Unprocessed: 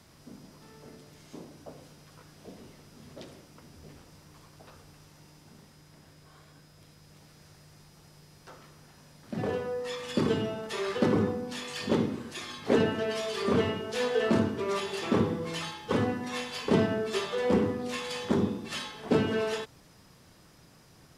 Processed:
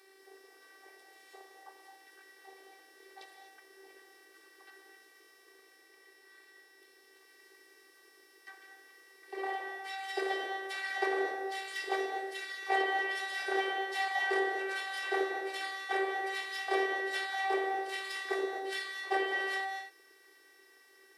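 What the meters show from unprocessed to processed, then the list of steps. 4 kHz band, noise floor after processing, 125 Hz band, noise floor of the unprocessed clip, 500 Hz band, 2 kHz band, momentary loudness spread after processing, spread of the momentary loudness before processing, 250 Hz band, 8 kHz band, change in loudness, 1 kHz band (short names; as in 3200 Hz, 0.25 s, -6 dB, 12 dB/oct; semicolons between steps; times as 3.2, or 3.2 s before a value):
-3.5 dB, -62 dBFS, under -40 dB, -57 dBFS, -7.0 dB, +5.0 dB, 10 LU, 20 LU, -15.0 dB, -6.0 dB, -4.0 dB, +2.5 dB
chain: thirty-one-band EQ 160 Hz -8 dB, 400 Hz -8 dB, 1000 Hz -5 dB, 1600 Hz +12 dB, 6300 Hz -9 dB; frequency shift +280 Hz; robotiser 388 Hz; non-linear reverb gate 0.27 s rising, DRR 6.5 dB; gain -1.5 dB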